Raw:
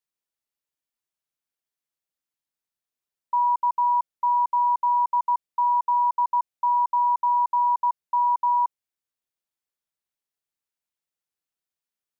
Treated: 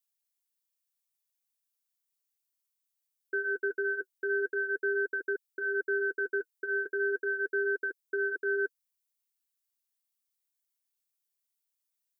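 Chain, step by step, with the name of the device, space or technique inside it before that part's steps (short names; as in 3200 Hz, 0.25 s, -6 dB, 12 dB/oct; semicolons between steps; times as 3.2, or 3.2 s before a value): tilt +4.5 dB/oct; alien voice (ring modulator 570 Hz; flange 0.37 Hz, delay 2.6 ms, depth 6.6 ms, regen -32%); gain -2.5 dB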